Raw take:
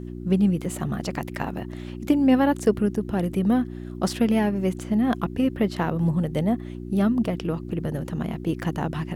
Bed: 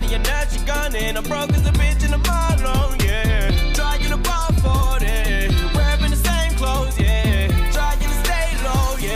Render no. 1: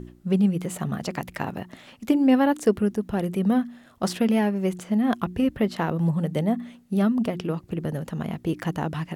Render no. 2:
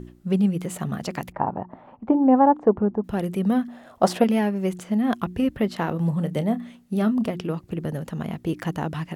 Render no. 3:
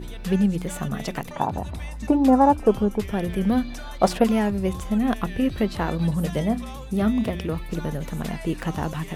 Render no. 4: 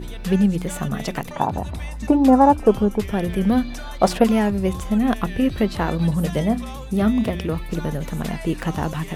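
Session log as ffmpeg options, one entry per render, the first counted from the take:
-af "bandreject=f=60:t=h:w=4,bandreject=f=120:t=h:w=4,bandreject=f=180:t=h:w=4,bandreject=f=240:t=h:w=4,bandreject=f=300:t=h:w=4,bandreject=f=360:t=h:w=4"
-filter_complex "[0:a]asettb=1/sr,asplit=3[a][b][c];[a]atrim=end=1.324[d];[b]atrim=start=1.32:end=3.04,asetpts=PTS-STARTPTS,afade=t=in:d=0.004:c=qsin,afade=t=out:st=1.716:d=0.004:c=qsin,lowpass=f=900:t=q:w=3.1[e];[c]atrim=start=3.036[f];[d][e]acrossfade=d=0.004:c1=hsin:c2=qsin[g];[g][f]acrossfade=d=0.004:c1=qsin:c2=hsin,asettb=1/sr,asplit=3[h][i][j];[h]atrim=end=3.684[k];[i]atrim=start=3.68:end=4.24,asetpts=PTS-STARTPTS,afade=t=in:d=0.004:c=qsin,afade=t=out:st=0.556:d=0.004:c=qsin,equalizer=f=690:t=o:w=1.5:g=12.5[l];[j]atrim=start=4.236[m];[k][l]acrossfade=d=0.004:c1=hsin:c2=qsin[n];[n][m]acrossfade=d=0.004:c1=qsin:c2=hsin,asettb=1/sr,asplit=3[o][p][q];[o]atrim=end=5.774[r];[p]atrim=start=5.77:end=7.31,asetpts=PTS-STARTPTS,afade=t=in:d=0.004:c=qsin,afade=t=out:st=1.536:d=0.004:c=qsin,asplit=2[s][t];[t]adelay=28,volume=-13dB[u];[s][u]amix=inputs=2:normalize=0,atrim=end_sample=67914[v];[q]atrim=start=7.306[w];[r][v]acrossfade=d=0.004:c1=hsin:c2=qsin[x];[x][w]acrossfade=d=0.004:c1=qsin:c2=hsin"
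-filter_complex "[1:a]volume=-17.5dB[a];[0:a][a]amix=inputs=2:normalize=0"
-af "volume=3dB,alimiter=limit=-2dB:level=0:latency=1"

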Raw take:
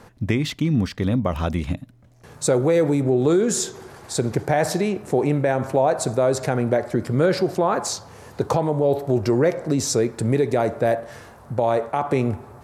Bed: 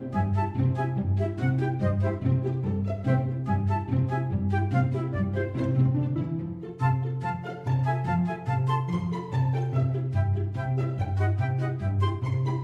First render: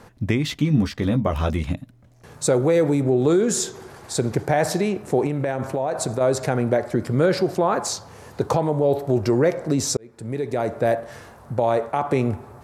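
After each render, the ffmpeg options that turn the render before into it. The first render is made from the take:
-filter_complex "[0:a]asettb=1/sr,asplit=3[a][b][c];[a]atrim=end=0.484[d];[b]atrim=start=0.48:end=1.63,asetpts=PTS-STARTPTS,afade=t=in:d=0.004:c=qsin,afade=t=out:st=1.146:d=0.004:c=qsin,asplit=2[e][f];[f]adelay=14,volume=-5.5dB[g];[e][g]amix=inputs=2:normalize=0,atrim=end_sample=50715[h];[c]atrim=start=1.626[i];[d][h]acrossfade=d=0.004:c1=hsin:c2=qsin[j];[j][i]acrossfade=d=0.004:c1=qsin:c2=hsin,asettb=1/sr,asplit=3[k][l][m];[k]atrim=end=5.264[n];[l]atrim=start=5.26:end=6.21,asetpts=PTS-STARTPTS,afade=t=in:d=0.004:c=qsin,afade=t=out:st=0.946:d=0.004:c=qsin,acompressor=threshold=-19dB:ratio=6:attack=3.2:release=140:knee=1:detection=peak[o];[m]atrim=start=6.206[p];[n][o]acrossfade=d=0.004:c1=hsin:c2=qsin[q];[q][p]acrossfade=d=0.004:c1=qsin:c2=hsin,asplit=2[r][s];[r]atrim=end=9.97,asetpts=PTS-STARTPTS,afade=t=out:st=9.966:d=0.004:c=hsin[t];[s]atrim=start=9.97,asetpts=PTS-STARTPTS,afade=t=in:d=0.92[u];[t][u]concat=n=2:v=0:a=1"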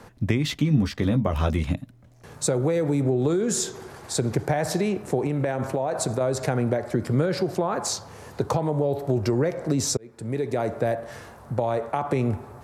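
-filter_complex "[0:a]acrossover=split=160[a][b];[b]acompressor=threshold=-21dB:ratio=6[c];[a][c]amix=inputs=2:normalize=0"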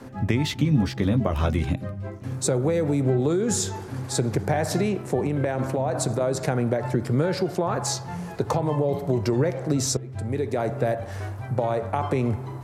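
-filter_complex "[1:a]volume=-8dB[a];[0:a][a]amix=inputs=2:normalize=0"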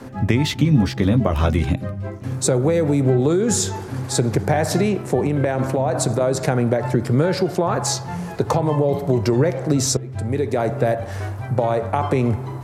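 -af "volume=5dB"

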